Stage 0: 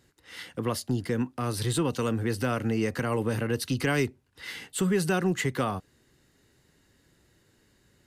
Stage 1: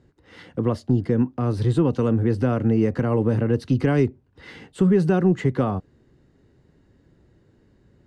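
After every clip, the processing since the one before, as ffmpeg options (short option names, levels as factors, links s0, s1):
-af "lowpass=6600,tiltshelf=f=1200:g=9"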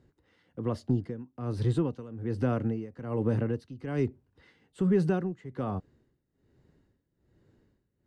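-af "tremolo=f=1.2:d=0.87,volume=0.501"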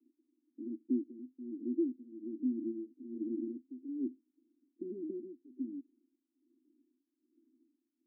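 -af "aeval=exprs='max(val(0),0)':c=same,asuperpass=centerf=290:order=8:qfactor=2.8,volume=1.88"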